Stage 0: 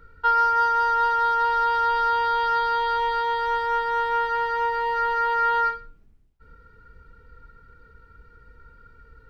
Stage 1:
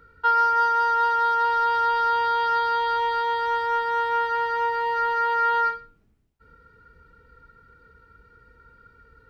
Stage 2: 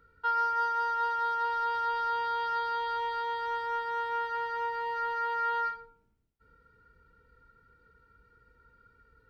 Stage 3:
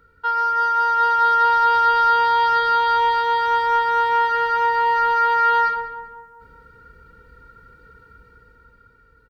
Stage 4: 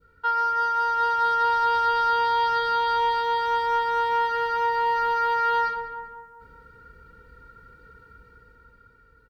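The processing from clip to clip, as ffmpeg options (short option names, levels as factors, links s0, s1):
-af "highpass=f=93:p=1"
-af "bandreject=f=76.97:t=h:w=4,bandreject=f=153.94:t=h:w=4,bandreject=f=230.91:t=h:w=4,bandreject=f=307.88:t=h:w=4,bandreject=f=384.85:t=h:w=4,bandreject=f=461.82:t=h:w=4,bandreject=f=538.79:t=h:w=4,bandreject=f=615.76:t=h:w=4,bandreject=f=692.73:t=h:w=4,bandreject=f=769.7:t=h:w=4,bandreject=f=846.67:t=h:w=4,bandreject=f=923.64:t=h:w=4,bandreject=f=1000.61:t=h:w=4,bandreject=f=1077.58:t=h:w=4,bandreject=f=1154.55:t=h:w=4,bandreject=f=1231.52:t=h:w=4,bandreject=f=1308.49:t=h:w=4,bandreject=f=1385.46:t=h:w=4,bandreject=f=1462.43:t=h:w=4,bandreject=f=1539.4:t=h:w=4,bandreject=f=1616.37:t=h:w=4,bandreject=f=1693.34:t=h:w=4,bandreject=f=1770.31:t=h:w=4,bandreject=f=1847.28:t=h:w=4,bandreject=f=1924.25:t=h:w=4,bandreject=f=2001.22:t=h:w=4,bandreject=f=2078.19:t=h:w=4,bandreject=f=2155.16:t=h:w=4,bandreject=f=2232.13:t=h:w=4,bandreject=f=2309.1:t=h:w=4,bandreject=f=2386.07:t=h:w=4,bandreject=f=2463.04:t=h:w=4,bandreject=f=2540.01:t=h:w=4,bandreject=f=2616.98:t=h:w=4,bandreject=f=2693.95:t=h:w=4,bandreject=f=2770.92:t=h:w=4,volume=0.376"
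-filter_complex "[0:a]dynaudnorm=f=150:g=13:m=2.24,asplit=2[s0][s1];[s1]adelay=196,lowpass=f=1600:p=1,volume=0.355,asplit=2[s2][s3];[s3]adelay=196,lowpass=f=1600:p=1,volume=0.54,asplit=2[s4][s5];[s5]adelay=196,lowpass=f=1600:p=1,volume=0.54,asplit=2[s6][s7];[s7]adelay=196,lowpass=f=1600:p=1,volume=0.54,asplit=2[s8][s9];[s9]adelay=196,lowpass=f=1600:p=1,volume=0.54,asplit=2[s10][s11];[s11]adelay=196,lowpass=f=1600:p=1,volume=0.54[s12];[s2][s4][s6][s8][s10][s12]amix=inputs=6:normalize=0[s13];[s0][s13]amix=inputs=2:normalize=0,volume=2.24"
-af "adynamicequalizer=threshold=0.0398:dfrequency=1500:dqfactor=0.89:tfrequency=1500:tqfactor=0.89:attack=5:release=100:ratio=0.375:range=2.5:mode=cutabove:tftype=bell,volume=0.794"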